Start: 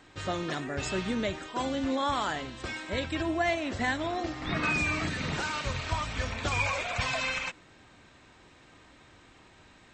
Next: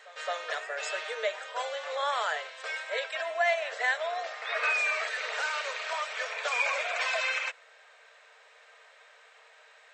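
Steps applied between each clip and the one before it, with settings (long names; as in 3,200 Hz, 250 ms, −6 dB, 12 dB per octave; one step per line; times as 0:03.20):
Chebyshev high-pass with heavy ripple 440 Hz, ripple 6 dB
echo ahead of the sound 218 ms −18.5 dB
level +4 dB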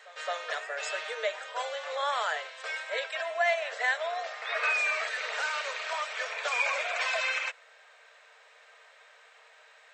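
high-pass filter 350 Hz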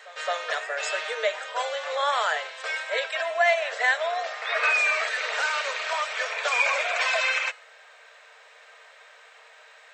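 hum removal 421.1 Hz, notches 34
level +5.5 dB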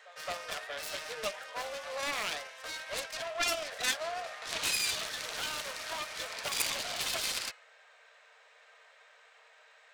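phase distortion by the signal itself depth 0.55 ms
level −8.5 dB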